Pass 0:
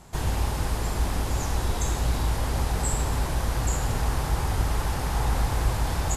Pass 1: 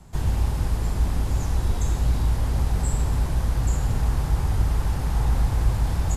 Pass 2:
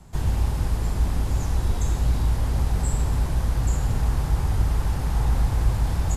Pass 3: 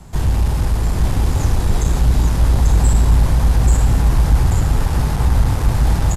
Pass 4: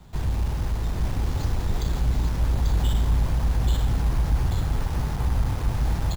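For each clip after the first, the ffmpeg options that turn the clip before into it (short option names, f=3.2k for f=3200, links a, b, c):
-filter_complex "[0:a]lowshelf=f=430:g=3,acrossover=split=230|490|2400[a][b][c][d];[a]acontrast=63[e];[e][b][c][d]amix=inputs=4:normalize=0,volume=-5dB"
-af anull
-filter_complex "[0:a]asoftclip=type=tanh:threshold=-16.5dB,asplit=2[a][b];[b]aecho=0:1:840:0.708[c];[a][c]amix=inputs=2:normalize=0,volume=8.5dB"
-af "acrusher=samples=4:mix=1:aa=0.000001,volume=-9dB"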